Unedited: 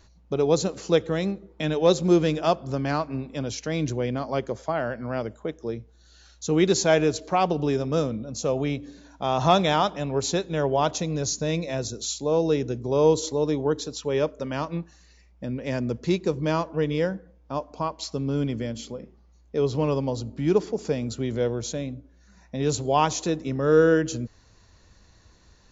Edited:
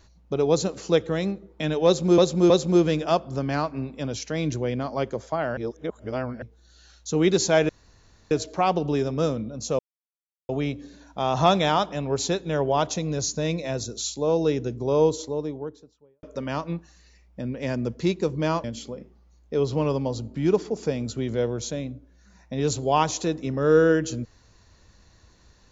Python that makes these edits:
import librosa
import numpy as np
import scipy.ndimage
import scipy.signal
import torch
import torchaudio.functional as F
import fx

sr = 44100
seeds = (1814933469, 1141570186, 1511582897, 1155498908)

y = fx.studio_fade_out(x, sr, start_s=12.77, length_s=1.5)
y = fx.edit(y, sr, fx.repeat(start_s=1.86, length_s=0.32, count=3),
    fx.reverse_span(start_s=4.93, length_s=0.85),
    fx.insert_room_tone(at_s=7.05, length_s=0.62),
    fx.insert_silence(at_s=8.53, length_s=0.7),
    fx.cut(start_s=16.68, length_s=1.98), tone=tone)